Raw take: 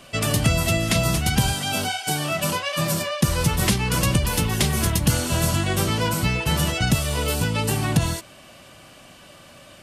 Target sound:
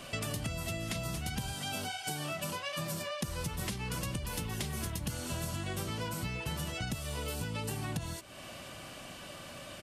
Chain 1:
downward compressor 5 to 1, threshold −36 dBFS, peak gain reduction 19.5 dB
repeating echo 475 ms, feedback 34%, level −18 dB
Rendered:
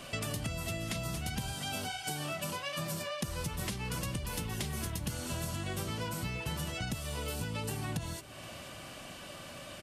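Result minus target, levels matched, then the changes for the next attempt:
echo-to-direct +9.5 dB
change: repeating echo 475 ms, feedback 34%, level −27.5 dB

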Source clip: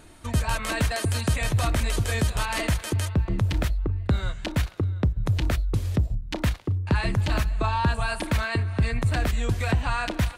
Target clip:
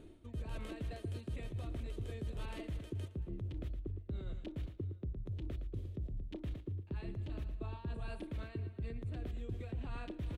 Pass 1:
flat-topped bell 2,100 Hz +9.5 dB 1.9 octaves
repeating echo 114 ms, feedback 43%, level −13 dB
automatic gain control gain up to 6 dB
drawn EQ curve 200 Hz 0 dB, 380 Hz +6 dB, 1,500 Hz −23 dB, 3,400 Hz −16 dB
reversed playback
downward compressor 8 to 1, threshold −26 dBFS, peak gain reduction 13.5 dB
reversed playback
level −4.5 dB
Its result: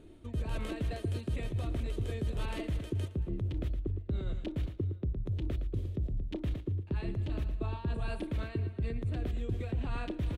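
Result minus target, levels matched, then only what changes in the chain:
downward compressor: peak gain reduction −7.5 dB
change: downward compressor 8 to 1, threshold −34.5 dBFS, peak gain reduction 21 dB

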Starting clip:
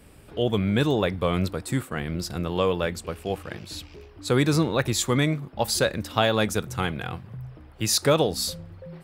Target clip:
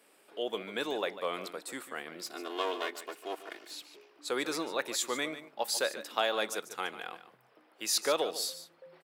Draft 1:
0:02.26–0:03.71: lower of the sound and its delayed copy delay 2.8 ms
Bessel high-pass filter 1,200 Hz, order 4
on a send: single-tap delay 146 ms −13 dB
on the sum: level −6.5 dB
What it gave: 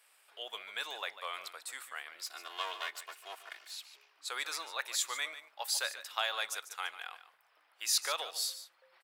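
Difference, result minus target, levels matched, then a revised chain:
500 Hz band −11.5 dB
0:02.26–0:03.71: lower of the sound and its delayed copy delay 2.8 ms
Bessel high-pass filter 470 Hz, order 4
on a send: single-tap delay 146 ms −13 dB
on the sum: level −6.5 dB

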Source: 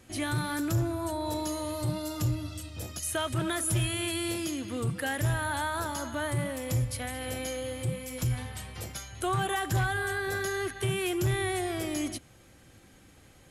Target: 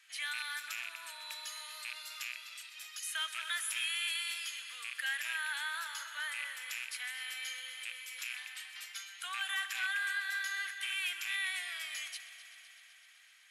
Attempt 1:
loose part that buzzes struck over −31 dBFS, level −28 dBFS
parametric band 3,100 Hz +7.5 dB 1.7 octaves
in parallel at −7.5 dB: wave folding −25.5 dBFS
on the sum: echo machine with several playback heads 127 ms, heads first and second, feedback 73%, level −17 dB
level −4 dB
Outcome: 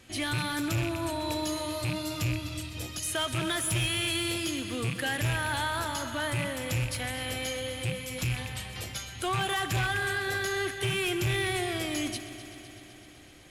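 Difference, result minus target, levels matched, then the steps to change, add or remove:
1,000 Hz band +6.5 dB
add after loose part that buzzes: four-pole ladder high-pass 1,300 Hz, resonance 35%

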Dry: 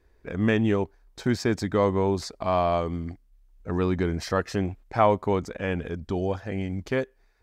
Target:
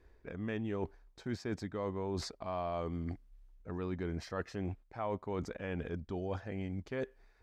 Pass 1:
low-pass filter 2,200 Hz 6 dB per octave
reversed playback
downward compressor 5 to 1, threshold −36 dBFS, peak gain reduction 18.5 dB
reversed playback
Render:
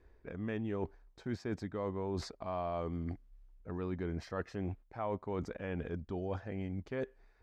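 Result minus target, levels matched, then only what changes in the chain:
4,000 Hz band −3.5 dB
change: low-pass filter 4,600 Hz 6 dB per octave

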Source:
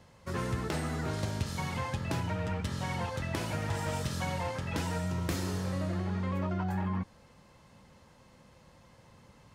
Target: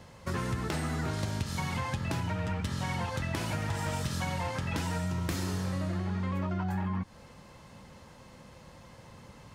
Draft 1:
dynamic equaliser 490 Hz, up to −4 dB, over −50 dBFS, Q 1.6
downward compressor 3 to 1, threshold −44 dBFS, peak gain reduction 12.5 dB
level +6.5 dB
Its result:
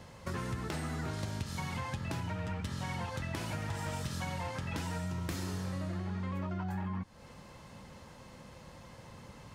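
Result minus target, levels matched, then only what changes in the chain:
downward compressor: peak gain reduction +4.5 dB
change: downward compressor 3 to 1, threshold −37 dBFS, peak gain reduction 8 dB

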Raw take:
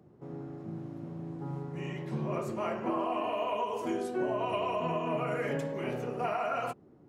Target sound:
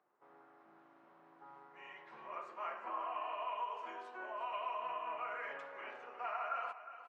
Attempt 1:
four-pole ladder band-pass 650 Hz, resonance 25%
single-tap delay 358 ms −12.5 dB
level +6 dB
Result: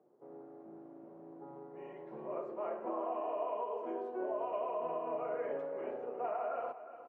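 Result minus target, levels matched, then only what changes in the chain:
2,000 Hz band −12.5 dB
change: four-pole ladder band-pass 1,500 Hz, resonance 25%

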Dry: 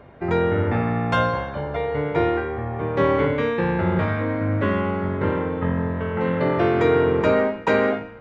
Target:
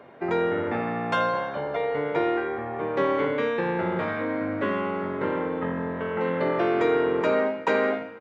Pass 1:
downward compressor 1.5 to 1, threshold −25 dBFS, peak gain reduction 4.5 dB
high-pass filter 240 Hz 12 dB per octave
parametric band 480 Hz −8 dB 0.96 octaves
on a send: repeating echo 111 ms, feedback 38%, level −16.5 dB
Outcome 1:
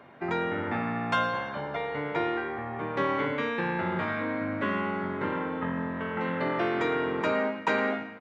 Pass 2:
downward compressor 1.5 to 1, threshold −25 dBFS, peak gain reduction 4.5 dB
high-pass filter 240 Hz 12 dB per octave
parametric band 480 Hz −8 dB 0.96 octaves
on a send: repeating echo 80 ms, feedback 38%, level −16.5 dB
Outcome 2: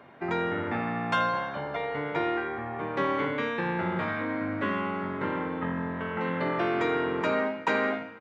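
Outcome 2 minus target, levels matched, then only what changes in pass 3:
500 Hz band −3.0 dB
remove: parametric band 480 Hz −8 dB 0.96 octaves

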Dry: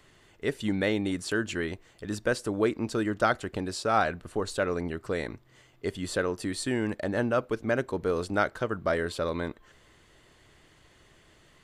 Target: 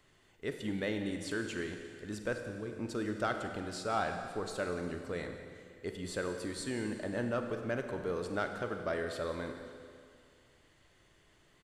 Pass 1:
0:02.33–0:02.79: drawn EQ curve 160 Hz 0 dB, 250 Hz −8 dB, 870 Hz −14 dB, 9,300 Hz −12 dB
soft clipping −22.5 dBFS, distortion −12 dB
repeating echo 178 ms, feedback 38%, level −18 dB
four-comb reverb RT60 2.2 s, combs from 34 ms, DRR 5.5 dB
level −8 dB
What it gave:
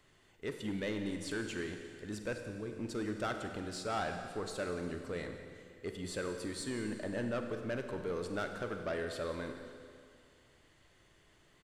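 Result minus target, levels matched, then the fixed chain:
soft clipping: distortion +10 dB
0:02.33–0:02.79: drawn EQ curve 160 Hz 0 dB, 250 Hz −8 dB, 870 Hz −14 dB, 9,300 Hz −12 dB
soft clipping −14 dBFS, distortion −23 dB
repeating echo 178 ms, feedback 38%, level −18 dB
four-comb reverb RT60 2.2 s, combs from 34 ms, DRR 5.5 dB
level −8 dB

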